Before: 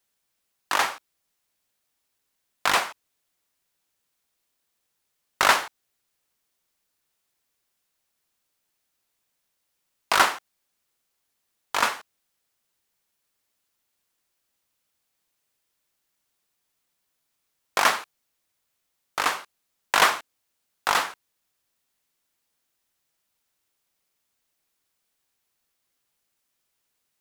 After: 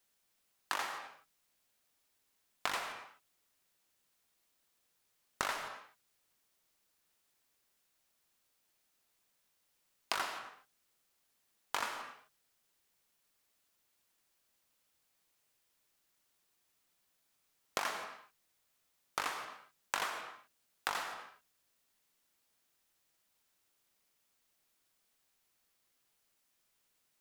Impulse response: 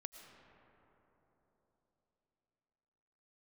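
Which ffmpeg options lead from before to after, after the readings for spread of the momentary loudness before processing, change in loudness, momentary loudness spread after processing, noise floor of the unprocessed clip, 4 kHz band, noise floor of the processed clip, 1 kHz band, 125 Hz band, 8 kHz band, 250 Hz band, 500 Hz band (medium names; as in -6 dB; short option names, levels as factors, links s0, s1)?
15 LU, -16.0 dB, 16 LU, -77 dBFS, -15.0 dB, -78 dBFS, -15.5 dB, -13.0 dB, -14.5 dB, -14.0 dB, -14.5 dB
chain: -filter_complex "[0:a]bandreject=f=50:t=h:w=6,bandreject=f=100:t=h:w=6,bandreject=f=150:t=h:w=6,acompressor=threshold=0.0251:ratio=16[s0];[1:a]atrim=start_sample=2205,afade=t=out:st=0.32:d=0.01,atrim=end_sample=14553[s1];[s0][s1]afir=irnorm=-1:irlink=0,volume=1.68"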